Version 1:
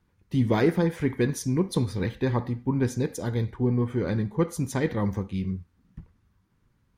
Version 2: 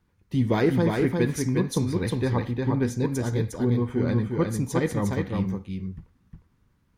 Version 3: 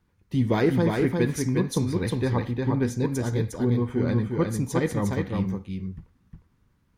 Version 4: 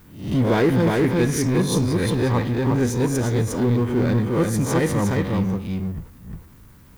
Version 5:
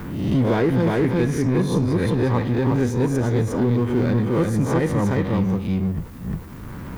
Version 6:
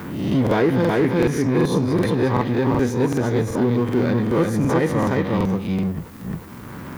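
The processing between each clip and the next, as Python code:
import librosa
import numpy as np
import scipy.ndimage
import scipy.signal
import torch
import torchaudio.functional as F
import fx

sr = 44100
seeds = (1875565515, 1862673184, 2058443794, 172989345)

y1 = x + 10.0 ** (-3.5 / 20.0) * np.pad(x, (int(357 * sr / 1000.0), 0))[:len(x)]
y2 = y1
y3 = fx.spec_swells(y2, sr, rise_s=0.39)
y3 = fx.power_curve(y3, sr, exponent=0.7)
y3 = fx.dmg_noise_colour(y3, sr, seeds[0], colour='violet', level_db=-58.0)
y4 = fx.high_shelf(y3, sr, hz=3100.0, db=-9.0)
y4 = fx.band_squash(y4, sr, depth_pct=70)
y5 = fx.highpass(y4, sr, hz=190.0, slope=6)
y5 = fx.dynamic_eq(y5, sr, hz=8200.0, q=2.5, threshold_db=-56.0, ratio=4.0, max_db=-4)
y5 = fx.buffer_crackle(y5, sr, first_s=0.42, period_s=0.38, block=2048, kind='repeat')
y5 = F.gain(torch.from_numpy(y5), 3.0).numpy()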